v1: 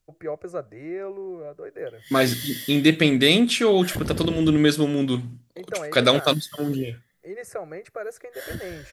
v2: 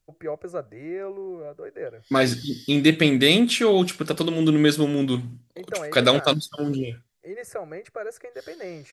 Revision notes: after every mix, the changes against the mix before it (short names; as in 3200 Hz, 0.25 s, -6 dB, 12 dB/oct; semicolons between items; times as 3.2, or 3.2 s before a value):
background: add band-pass 4800 Hz, Q 4.2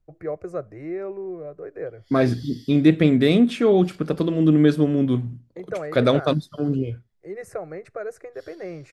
second voice: add high shelf 2100 Hz -11 dB; background -3.0 dB; master: add tilt -1.5 dB/oct